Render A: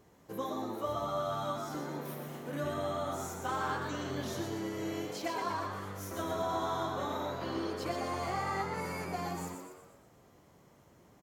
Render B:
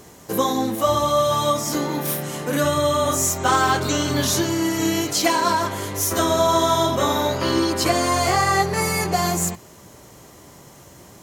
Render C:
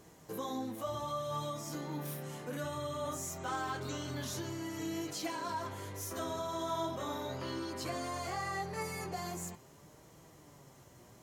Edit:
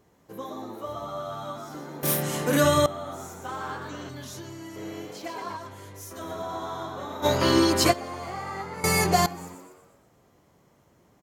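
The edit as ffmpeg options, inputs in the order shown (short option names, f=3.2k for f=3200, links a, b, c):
-filter_complex "[1:a]asplit=3[a][b][c];[2:a]asplit=2[d][e];[0:a]asplit=6[f][g][h][i][j][k];[f]atrim=end=2.032[l];[a]atrim=start=2.028:end=2.862[m];[g]atrim=start=2.858:end=4.092[n];[d]atrim=start=4.088:end=4.762[o];[h]atrim=start=4.758:end=5.572[p];[e]atrim=start=5.568:end=6.212[q];[i]atrim=start=6.208:end=7.26[r];[b]atrim=start=7.22:end=7.94[s];[j]atrim=start=7.9:end=8.842[t];[c]atrim=start=8.838:end=9.262[u];[k]atrim=start=9.258[v];[l][m]acrossfade=d=0.004:c1=hsin:c2=hsin[w];[w][n]acrossfade=d=0.004:c1=hsin:c2=hsin[x];[x][o]acrossfade=d=0.004:c1=hsin:c2=hsin[y];[y][p]acrossfade=d=0.004:c1=hsin:c2=hsin[z];[z][q]acrossfade=d=0.004:c1=hsin:c2=hsin[aa];[aa][r]acrossfade=d=0.004:c1=hsin:c2=hsin[ab];[ab][s]acrossfade=d=0.04:c1=tri:c2=tri[ac];[ac][t]acrossfade=d=0.04:c1=tri:c2=tri[ad];[ad][u]acrossfade=d=0.004:c1=hsin:c2=hsin[ae];[ae][v]acrossfade=d=0.004:c1=hsin:c2=hsin"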